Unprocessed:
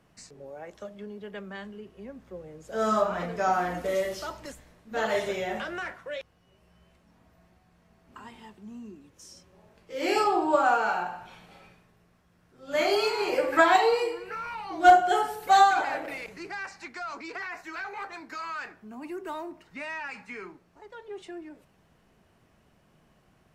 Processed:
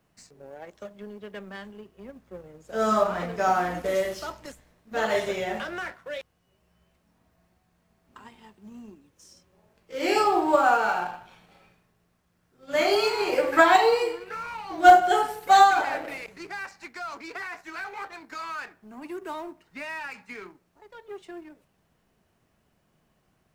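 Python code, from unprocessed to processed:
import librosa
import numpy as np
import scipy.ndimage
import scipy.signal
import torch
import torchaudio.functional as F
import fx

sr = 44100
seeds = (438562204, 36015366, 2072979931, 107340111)

y = fx.law_mismatch(x, sr, coded='A')
y = y * librosa.db_to_amplitude(3.0)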